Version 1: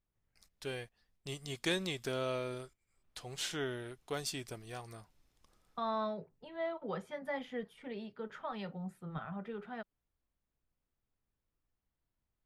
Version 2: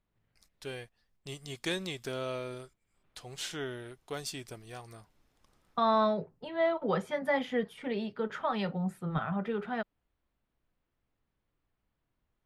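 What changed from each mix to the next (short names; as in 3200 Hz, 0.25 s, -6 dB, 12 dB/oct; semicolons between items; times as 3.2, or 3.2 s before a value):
second voice +9.5 dB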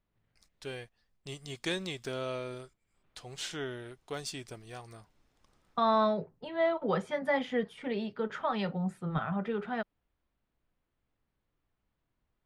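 master: add bell 12000 Hz -12 dB 0.28 oct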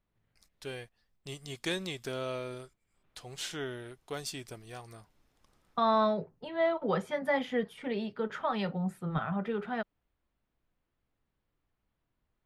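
master: add bell 12000 Hz +12 dB 0.28 oct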